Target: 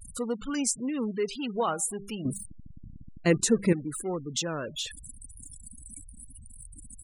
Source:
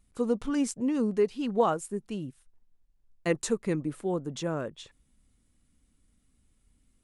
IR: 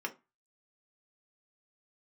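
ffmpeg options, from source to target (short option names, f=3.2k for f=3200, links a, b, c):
-filter_complex "[0:a]aeval=exprs='val(0)+0.5*0.0133*sgn(val(0))':c=same,highshelf=f=3.3k:g=7.5,bandreject=f=198.7:t=h:w=4,bandreject=f=397.4:t=h:w=4,bandreject=f=596.1:t=h:w=4,bandreject=f=794.8:t=h:w=4,bandreject=f=993.5:t=h:w=4,bandreject=f=1.1922k:t=h:w=4,bandreject=f=1.3909k:t=h:w=4,bandreject=f=1.5896k:t=h:w=4,bandreject=f=1.7883k:t=h:w=4,asplit=2[a][b];[b]adelay=280,highpass=300,lowpass=3.4k,asoftclip=type=hard:threshold=-19.5dB,volume=-30dB[c];[a][c]amix=inputs=2:normalize=0,asplit=2[d][e];[e]alimiter=limit=-22dB:level=0:latency=1:release=401,volume=-2.5dB[f];[d][f]amix=inputs=2:normalize=0,asettb=1/sr,asplit=3[g][h][i];[g]atrim=end=2.254[j];[h]atrim=start=2.25:end=3.73,asetpts=PTS-STARTPTS,afade=t=in:d=0.004:c=qsin,afade=t=out:st=1.476:d=0.004:c=qsin,equalizer=f=200:w=0.42:g=12.5[k];[i]atrim=start=3.726[l];[j][k]acrossfade=d=0.004:c1=hsin:c2=qsin[m];[m][l]acrossfade=d=0.004:c1=qsin:c2=hsin,acrossover=split=1100[n][o];[o]acontrast=55[p];[n][p]amix=inputs=2:normalize=0,afftfilt=real='re*gte(hypot(re,im),0.0447)':imag='im*gte(hypot(re,im),0.0447)':win_size=1024:overlap=0.75,volume=-8dB"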